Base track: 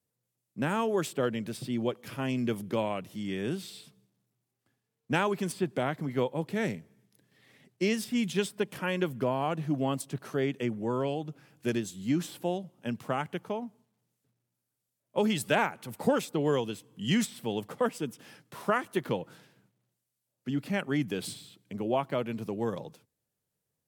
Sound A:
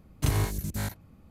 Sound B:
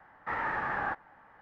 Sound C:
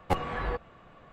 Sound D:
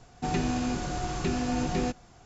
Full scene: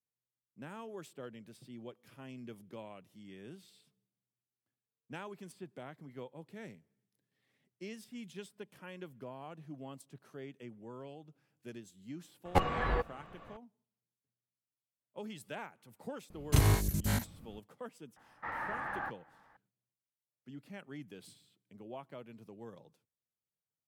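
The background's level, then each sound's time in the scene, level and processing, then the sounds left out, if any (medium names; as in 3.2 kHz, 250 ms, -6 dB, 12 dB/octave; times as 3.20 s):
base track -17.5 dB
12.45 s: add C
16.30 s: add A
18.16 s: add B -6.5 dB + band-stop 410 Hz, Q 6.4
not used: D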